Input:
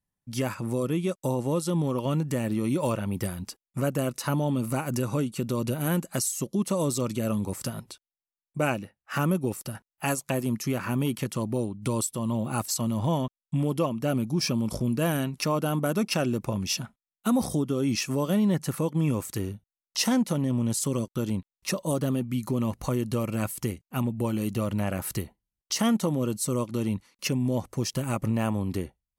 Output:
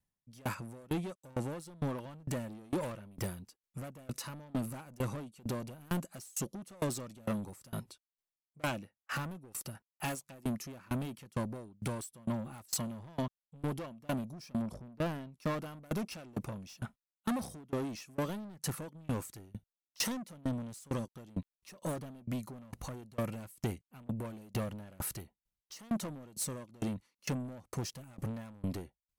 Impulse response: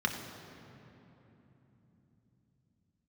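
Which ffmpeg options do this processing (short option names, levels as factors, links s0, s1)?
-filter_complex "[0:a]asettb=1/sr,asplit=3[s0][s1][s2];[s0]atrim=end=14.624[s3];[s1]atrim=start=14.62:end=15.32,asetpts=PTS-STARTPTS,afade=t=in:d=0.004:c=qsin,afade=t=out:st=0.696:d=0.004:c=qsin,highshelf=f=2700:g=-11.5[s4];[s2]atrim=start=15.316[s5];[s3][s4]acrossfade=d=0.004:c1=hsin:c2=qsin[s6];[s6][s5]acrossfade=d=0.004:c1=qsin:c2=hsin,asoftclip=type=tanh:threshold=0.0335,aeval=exprs='val(0)*pow(10,-28*if(lt(mod(2.2*n/s,1),2*abs(2.2)/1000),1-mod(2.2*n/s,1)/(2*abs(2.2)/1000),(mod(2.2*n/s,1)-2*abs(2.2)/1000)/(1-2*abs(2.2)/1000))/20)':c=same,volume=1.33"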